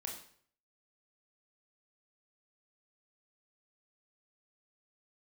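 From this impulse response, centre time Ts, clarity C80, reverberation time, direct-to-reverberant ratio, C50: 30 ms, 9.5 dB, 0.55 s, −0.5 dB, 6.0 dB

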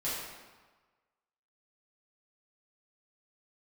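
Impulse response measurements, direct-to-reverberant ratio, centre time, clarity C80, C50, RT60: −10.5 dB, 87 ms, 2.0 dB, −0.5 dB, 1.3 s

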